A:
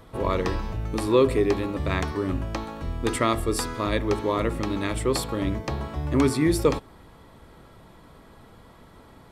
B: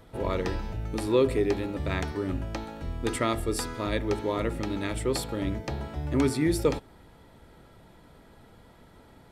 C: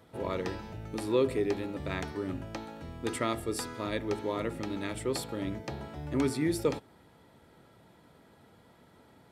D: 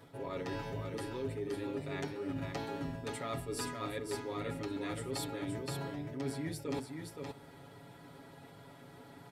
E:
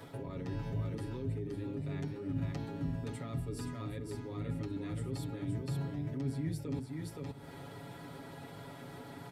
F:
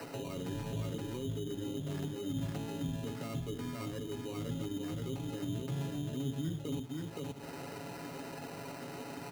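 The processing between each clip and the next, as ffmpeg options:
-af "bandreject=f=1.1k:w=6.6,volume=-3.5dB"
-af "highpass=100,volume=-4dB"
-af "aecho=1:1:7.2:0.98,areverse,acompressor=threshold=-37dB:ratio=12,areverse,aecho=1:1:521:0.562,volume=1dB"
-filter_complex "[0:a]acrossover=split=240[a][b];[b]acompressor=threshold=-53dB:ratio=10[c];[a][c]amix=inputs=2:normalize=0,volume=7dB"
-filter_complex "[0:a]acrossover=split=160[a][b];[b]acompressor=threshold=-54dB:ratio=2[c];[a][c]amix=inputs=2:normalize=0,acrossover=split=190 2400:gain=0.178 1 0.158[d][e][f];[d][e][f]amix=inputs=3:normalize=0,acrusher=samples=13:mix=1:aa=0.000001,volume=10dB"

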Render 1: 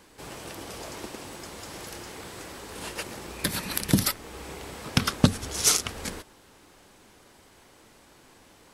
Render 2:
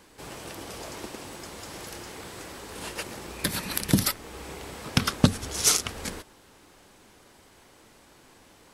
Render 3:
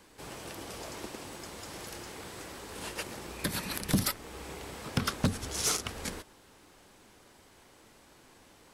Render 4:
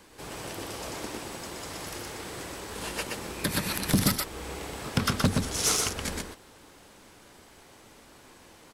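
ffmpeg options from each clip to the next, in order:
-af anull
-filter_complex "[0:a]acrossover=split=660|1700[a][b][c];[c]alimiter=limit=-13.5dB:level=0:latency=1:release=152[d];[a][b][d]amix=inputs=3:normalize=0,asoftclip=type=hard:threshold=-16.5dB,volume=-3dB"
-af "aecho=1:1:123:0.668,volume=3.5dB"

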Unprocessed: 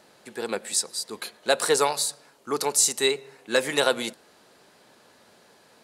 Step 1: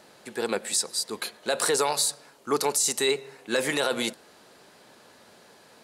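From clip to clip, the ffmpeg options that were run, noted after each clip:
-af "alimiter=limit=-16dB:level=0:latency=1:release=27,volume=2.5dB"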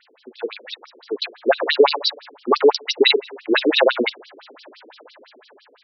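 -af "lowpass=6.3k,dynaudnorm=f=360:g=7:m=16.5dB,afftfilt=real='re*between(b*sr/1024,320*pow(4200/320,0.5+0.5*sin(2*PI*5.9*pts/sr))/1.41,320*pow(4200/320,0.5+0.5*sin(2*PI*5.9*pts/sr))*1.41)':imag='im*between(b*sr/1024,320*pow(4200/320,0.5+0.5*sin(2*PI*5.9*pts/sr))/1.41,320*pow(4200/320,0.5+0.5*sin(2*PI*5.9*pts/sr))*1.41)':win_size=1024:overlap=0.75,volume=5.5dB"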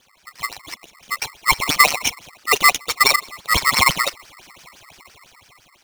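-af "aeval=exprs='val(0)*sgn(sin(2*PI*1600*n/s))':c=same"

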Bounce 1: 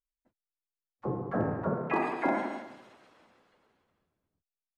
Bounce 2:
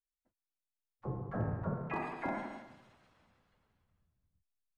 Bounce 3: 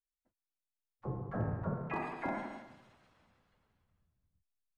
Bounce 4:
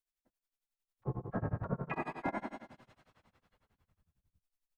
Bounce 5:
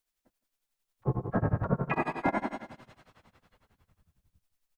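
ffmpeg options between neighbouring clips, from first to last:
-af "asubboost=boost=10.5:cutoff=120,volume=-7.5dB"
-af anull
-af "tremolo=f=11:d=0.97,volume=4dB"
-af "aecho=1:1:162:0.0841,volume=8dB"

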